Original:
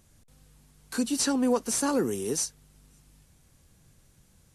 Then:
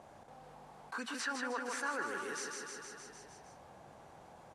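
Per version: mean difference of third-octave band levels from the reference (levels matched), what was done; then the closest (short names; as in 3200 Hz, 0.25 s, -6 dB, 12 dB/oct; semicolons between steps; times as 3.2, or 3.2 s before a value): 13.0 dB: auto-wah 740–1600 Hz, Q 3.2, up, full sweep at -28.5 dBFS; feedback echo 0.155 s, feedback 56%, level -6 dB; fast leveller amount 50%; gain +1 dB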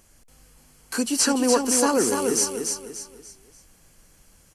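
6.0 dB: bell 120 Hz -11 dB 2 oct; notch 3700 Hz, Q 6.2; on a send: feedback echo 0.292 s, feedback 36%, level -5 dB; on the sum: gain +7 dB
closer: second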